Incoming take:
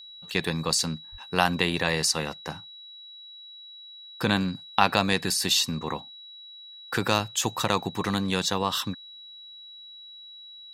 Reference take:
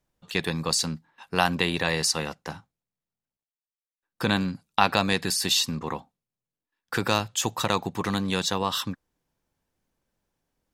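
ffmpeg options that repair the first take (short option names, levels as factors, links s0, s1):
-filter_complex "[0:a]bandreject=f=3900:w=30,asplit=3[s0][s1][s2];[s0]afade=t=out:st=1.11:d=0.02[s3];[s1]highpass=f=140:w=0.5412,highpass=f=140:w=1.3066,afade=t=in:st=1.11:d=0.02,afade=t=out:st=1.23:d=0.02[s4];[s2]afade=t=in:st=1.23:d=0.02[s5];[s3][s4][s5]amix=inputs=3:normalize=0"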